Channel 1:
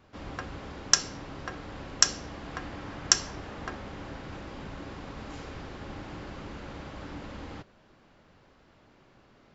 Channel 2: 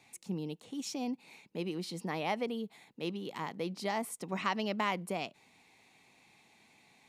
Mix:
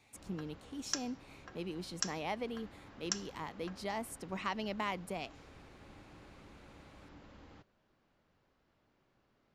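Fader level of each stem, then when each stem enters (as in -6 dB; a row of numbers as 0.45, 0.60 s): -15.0, -4.5 dB; 0.00, 0.00 s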